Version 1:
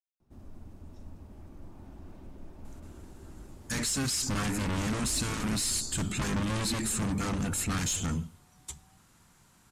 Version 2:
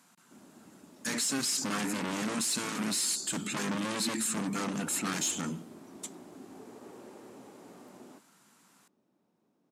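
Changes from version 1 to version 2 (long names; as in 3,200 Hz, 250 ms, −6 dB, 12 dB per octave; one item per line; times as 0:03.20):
speech: entry −2.65 s
master: add high-pass filter 190 Hz 24 dB per octave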